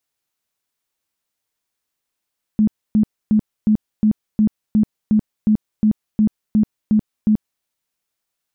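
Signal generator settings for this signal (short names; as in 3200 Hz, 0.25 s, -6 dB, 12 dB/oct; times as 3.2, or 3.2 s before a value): tone bursts 214 Hz, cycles 18, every 0.36 s, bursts 14, -10.5 dBFS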